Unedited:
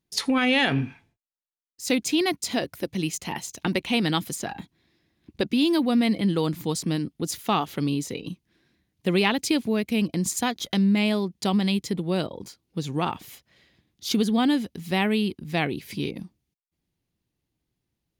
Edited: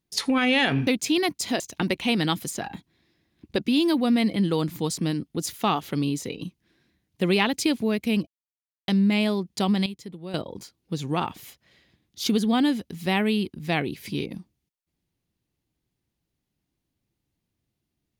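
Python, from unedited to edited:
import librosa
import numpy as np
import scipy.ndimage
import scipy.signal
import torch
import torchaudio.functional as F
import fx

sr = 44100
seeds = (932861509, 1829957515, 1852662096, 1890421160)

y = fx.edit(x, sr, fx.cut(start_s=0.87, length_s=1.03),
    fx.cut(start_s=2.63, length_s=0.82),
    fx.silence(start_s=10.12, length_s=0.61),
    fx.clip_gain(start_s=11.71, length_s=0.48, db=-11.5), tone=tone)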